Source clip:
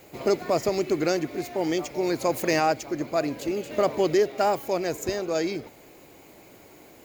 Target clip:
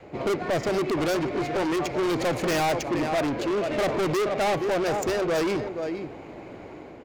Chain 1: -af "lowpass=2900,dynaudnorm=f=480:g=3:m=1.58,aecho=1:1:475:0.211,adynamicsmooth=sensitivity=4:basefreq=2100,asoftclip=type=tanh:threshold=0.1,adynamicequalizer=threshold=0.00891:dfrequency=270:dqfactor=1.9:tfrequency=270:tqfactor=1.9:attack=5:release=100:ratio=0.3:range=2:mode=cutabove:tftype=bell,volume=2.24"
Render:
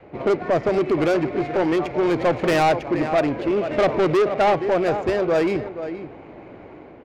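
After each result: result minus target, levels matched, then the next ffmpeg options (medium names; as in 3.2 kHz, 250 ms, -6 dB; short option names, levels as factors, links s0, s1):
4 kHz band -5.5 dB; saturation: distortion -6 dB
-af "dynaudnorm=f=480:g=3:m=1.58,aecho=1:1:475:0.211,adynamicsmooth=sensitivity=4:basefreq=2100,asoftclip=type=tanh:threshold=0.1,adynamicequalizer=threshold=0.00891:dfrequency=270:dqfactor=1.9:tfrequency=270:tqfactor=1.9:attack=5:release=100:ratio=0.3:range=2:mode=cutabove:tftype=bell,volume=2.24"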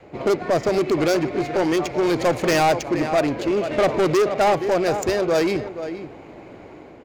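saturation: distortion -5 dB
-af "dynaudnorm=f=480:g=3:m=1.58,aecho=1:1:475:0.211,adynamicsmooth=sensitivity=4:basefreq=2100,asoftclip=type=tanh:threshold=0.0376,adynamicequalizer=threshold=0.00891:dfrequency=270:dqfactor=1.9:tfrequency=270:tqfactor=1.9:attack=5:release=100:ratio=0.3:range=2:mode=cutabove:tftype=bell,volume=2.24"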